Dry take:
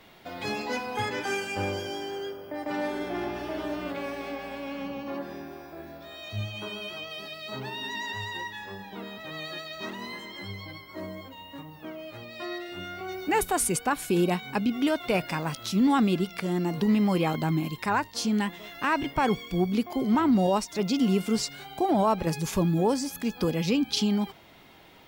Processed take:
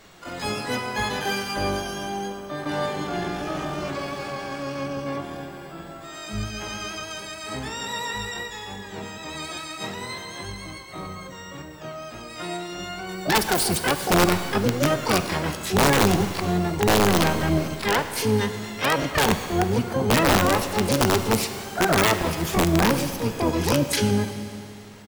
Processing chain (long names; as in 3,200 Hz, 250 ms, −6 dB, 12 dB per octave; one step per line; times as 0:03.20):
pitch-shifted copies added −12 semitones −2 dB, +4 semitones −15 dB, +12 semitones −1 dB
wrap-around overflow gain 11.5 dB
four-comb reverb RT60 2.6 s, combs from 33 ms, DRR 9 dB